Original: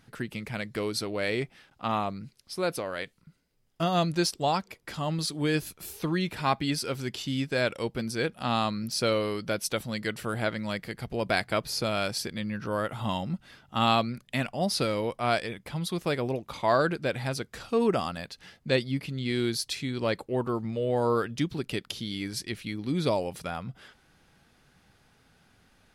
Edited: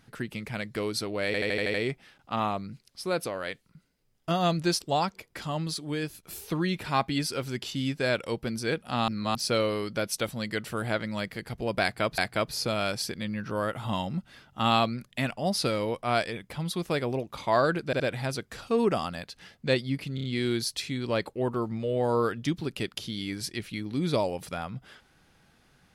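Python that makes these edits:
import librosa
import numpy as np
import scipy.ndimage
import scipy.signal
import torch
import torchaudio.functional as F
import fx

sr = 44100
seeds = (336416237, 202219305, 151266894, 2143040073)

y = fx.edit(x, sr, fx.stutter(start_s=1.26, slice_s=0.08, count=7),
    fx.fade_out_to(start_s=4.92, length_s=0.83, floor_db=-8.5),
    fx.reverse_span(start_s=8.6, length_s=0.27),
    fx.repeat(start_s=11.34, length_s=0.36, count=2),
    fx.stutter(start_s=17.02, slice_s=0.07, count=3),
    fx.stutter(start_s=19.17, slice_s=0.03, count=4), tone=tone)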